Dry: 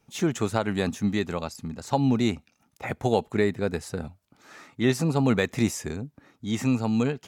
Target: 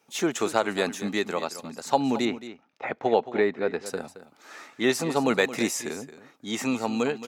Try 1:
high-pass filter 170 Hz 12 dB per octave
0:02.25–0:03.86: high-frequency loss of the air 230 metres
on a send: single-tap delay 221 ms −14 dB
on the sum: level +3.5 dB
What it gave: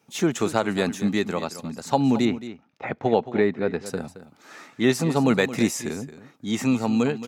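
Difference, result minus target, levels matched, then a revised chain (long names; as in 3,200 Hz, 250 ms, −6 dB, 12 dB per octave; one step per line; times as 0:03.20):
125 Hz band +7.5 dB
high-pass filter 350 Hz 12 dB per octave
0:02.25–0:03.86: high-frequency loss of the air 230 metres
on a send: single-tap delay 221 ms −14 dB
on the sum: level +3.5 dB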